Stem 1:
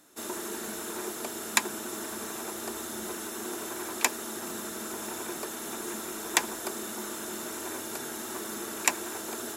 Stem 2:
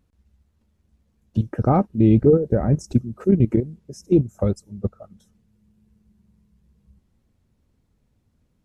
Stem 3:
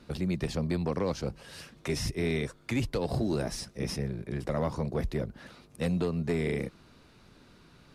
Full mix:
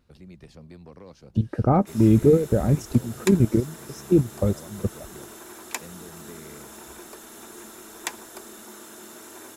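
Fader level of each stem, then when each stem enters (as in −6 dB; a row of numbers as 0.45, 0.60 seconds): −6.5, −1.5, −15.5 decibels; 1.70, 0.00, 0.00 seconds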